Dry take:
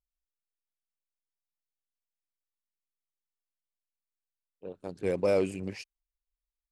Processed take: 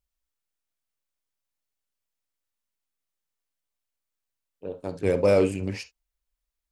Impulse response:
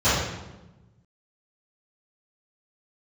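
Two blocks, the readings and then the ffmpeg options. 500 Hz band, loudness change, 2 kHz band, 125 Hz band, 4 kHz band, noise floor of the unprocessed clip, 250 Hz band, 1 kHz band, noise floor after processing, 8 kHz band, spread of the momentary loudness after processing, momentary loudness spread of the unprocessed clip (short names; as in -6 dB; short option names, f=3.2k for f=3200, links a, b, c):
+6.0 dB, +6.5 dB, +6.0 dB, +9.5 dB, +6.0 dB, under -85 dBFS, +6.5 dB, +6.0 dB, -85 dBFS, n/a, 18 LU, 19 LU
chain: -filter_complex "[0:a]asplit=2[a][b];[1:a]atrim=start_sample=2205,atrim=end_sample=3528[c];[b][c]afir=irnorm=-1:irlink=0,volume=-27dB[d];[a][d]amix=inputs=2:normalize=0,volume=6dB"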